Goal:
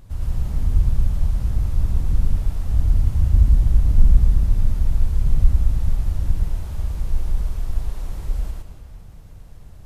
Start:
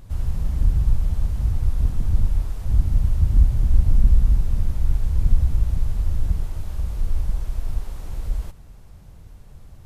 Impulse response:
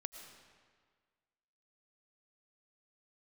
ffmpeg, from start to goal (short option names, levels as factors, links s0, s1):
-filter_complex "[0:a]asplit=2[s0][s1];[1:a]atrim=start_sample=2205,adelay=113[s2];[s1][s2]afir=irnorm=-1:irlink=0,volume=1.58[s3];[s0][s3]amix=inputs=2:normalize=0,volume=0.794"